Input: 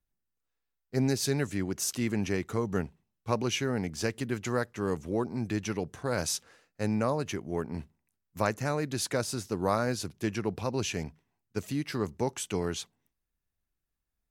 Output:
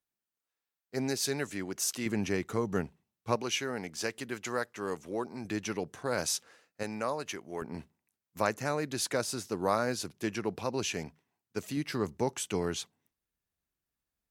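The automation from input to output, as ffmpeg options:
-af "asetnsamples=n=441:p=0,asendcmd='2.06 highpass f 130;3.36 highpass f 540;5.45 highpass f 250;6.83 highpass f 700;7.62 highpass f 240;11.77 highpass f 110',highpass=f=420:p=1"

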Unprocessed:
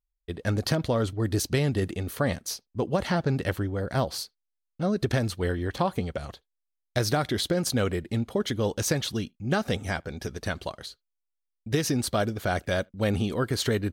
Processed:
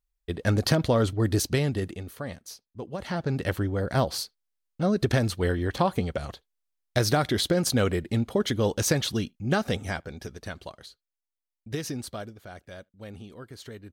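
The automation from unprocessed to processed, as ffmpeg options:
-af "volume=14.5dB,afade=t=out:st=1.2:d=0.97:silence=0.237137,afade=t=in:st=2.94:d=0.74:silence=0.266073,afade=t=out:st=9.35:d=1.07:silence=0.375837,afade=t=out:st=11.86:d=0.55:silence=0.316228"

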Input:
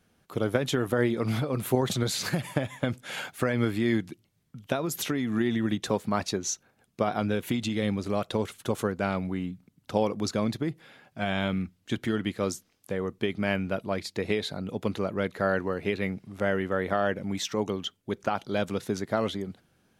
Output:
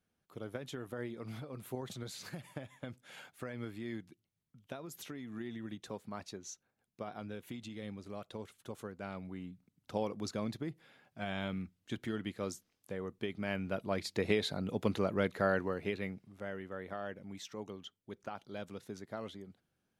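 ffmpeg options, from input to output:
-af "volume=-3dB,afade=t=in:st=8.9:d=1.08:silence=0.473151,afade=t=in:st=13.48:d=0.72:silence=0.446684,afade=t=out:st=15.21:d=1.2:silence=0.237137"

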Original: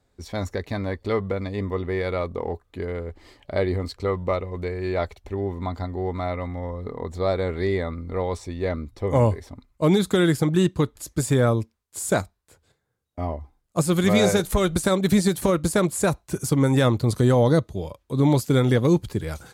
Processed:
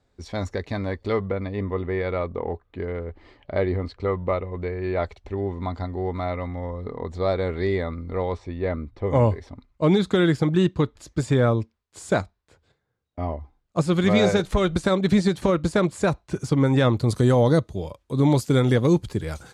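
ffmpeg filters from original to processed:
-af "asetnsamples=n=441:p=0,asendcmd='1.25 lowpass f 3000;5.04 lowpass f 5600;8.32 lowpass f 2800;9.07 lowpass f 4700;16.97 lowpass f 10000',lowpass=6.8k"

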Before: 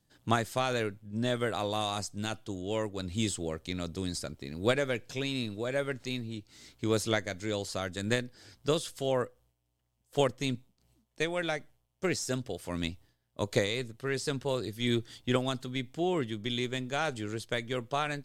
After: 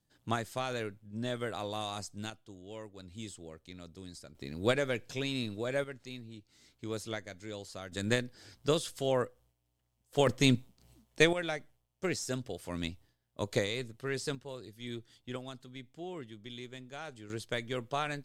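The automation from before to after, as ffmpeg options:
-af "asetnsamples=n=441:p=0,asendcmd='2.3 volume volume -13dB;4.35 volume volume -1.5dB;5.84 volume volume -9.5dB;7.92 volume volume -0.5dB;10.27 volume volume 7dB;11.33 volume volume -3dB;14.35 volume volume -12.5dB;17.3 volume volume -2.5dB',volume=-5.5dB"

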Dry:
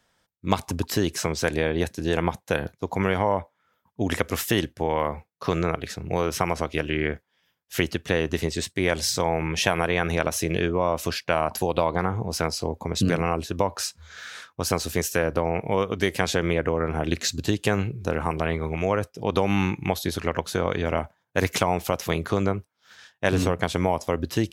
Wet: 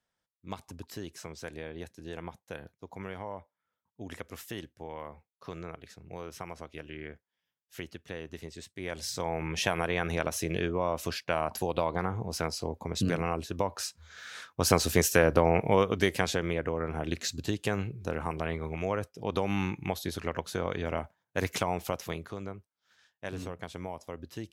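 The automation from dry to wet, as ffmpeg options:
-af "volume=1dB,afade=t=in:st=8.73:d=0.83:silence=0.298538,afade=t=in:st=14.24:d=0.47:silence=0.421697,afade=t=out:st=15.57:d=0.88:silence=0.375837,afade=t=out:st=21.9:d=0.43:silence=0.375837"

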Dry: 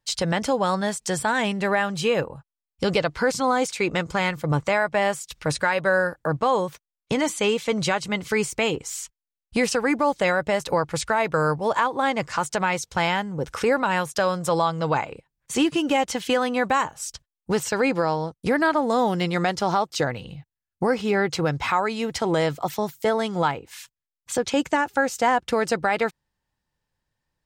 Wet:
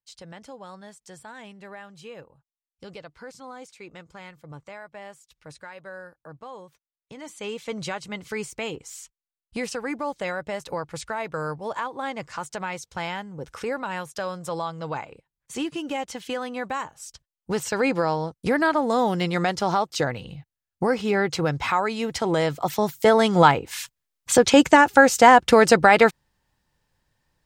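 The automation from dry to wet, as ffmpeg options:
-af "volume=8dB,afade=t=in:st=7.16:d=0.54:silence=0.266073,afade=t=in:st=17.11:d=0.78:silence=0.421697,afade=t=in:st=22.52:d=0.97:silence=0.375837"

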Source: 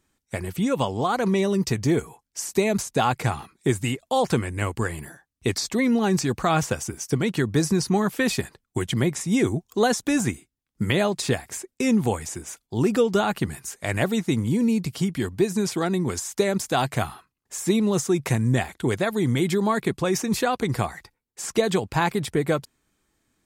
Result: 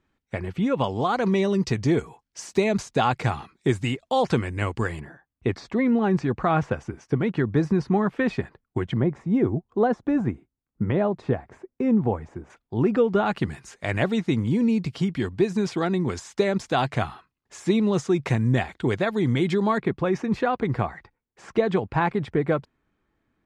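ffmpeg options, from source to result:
-af "asetnsamples=n=441:p=0,asendcmd='0.84 lowpass f 4800;5 lowpass f 1900;8.97 lowpass f 1100;12.5 lowpass f 2000;13.26 lowpass f 4000;19.78 lowpass f 2100',lowpass=2.9k"

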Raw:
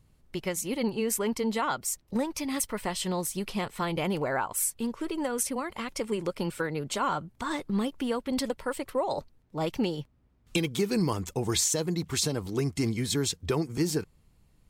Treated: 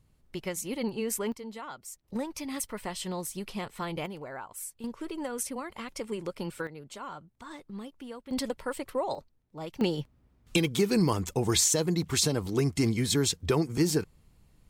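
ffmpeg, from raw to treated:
-af "asetnsamples=n=441:p=0,asendcmd='1.32 volume volume -12.5dB;2.04 volume volume -4.5dB;4.06 volume volume -11.5dB;4.84 volume volume -4.5dB;6.67 volume volume -12.5dB;8.31 volume volume -2dB;9.15 volume volume -9dB;9.81 volume volume 2dB',volume=-3dB"

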